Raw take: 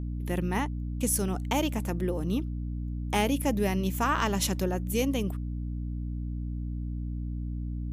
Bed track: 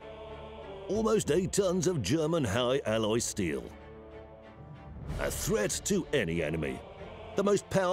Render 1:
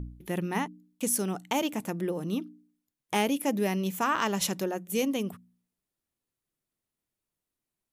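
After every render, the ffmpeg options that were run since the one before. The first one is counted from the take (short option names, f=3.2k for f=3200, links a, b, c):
-af "bandreject=f=60:t=h:w=4,bandreject=f=120:t=h:w=4,bandreject=f=180:t=h:w=4,bandreject=f=240:t=h:w=4,bandreject=f=300:t=h:w=4"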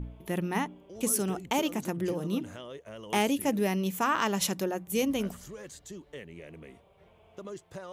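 -filter_complex "[1:a]volume=-15dB[a];[0:a][a]amix=inputs=2:normalize=0"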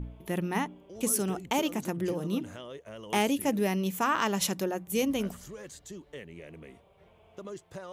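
-af anull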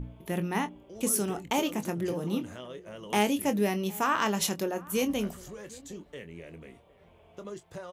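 -filter_complex "[0:a]asplit=2[a][b];[b]adelay=24,volume=-10dB[c];[a][c]amix=inputs=2:normalize=0,asplit=2[d][e];[e]adelay=758,volume=-22dB,highshelf=f=4k:g=-17.1[f];[d][f]amix=inputs=2:normalize=0"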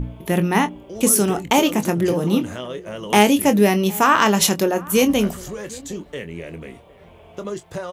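-af "volume=12dB,alimiter=limit=-3dB:level=0:latency=1"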